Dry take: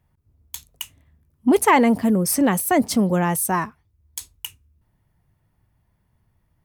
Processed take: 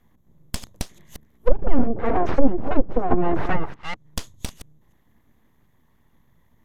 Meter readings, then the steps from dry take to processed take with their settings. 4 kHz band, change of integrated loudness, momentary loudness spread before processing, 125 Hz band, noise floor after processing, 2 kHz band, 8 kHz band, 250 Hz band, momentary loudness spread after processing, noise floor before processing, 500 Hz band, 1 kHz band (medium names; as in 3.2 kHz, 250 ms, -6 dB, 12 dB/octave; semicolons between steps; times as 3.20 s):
-6.5 dB, -7.5 dB, 21 LU, -3.0 dB, -61 dBFS, -8.0 dB, -14.5 dB, -6.0 dB, 14 LU, -68 dBFS, -2.0 dB, -6.0 dB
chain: chunks repeated in reverse 197 ms, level -12.5 dB; rippled EQ curve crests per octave 1.1, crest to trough 15 dB; full-wave rectifier; low-pass that closes with the level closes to 320 Hz, closed at -12 dBFS; trim +3.5 dB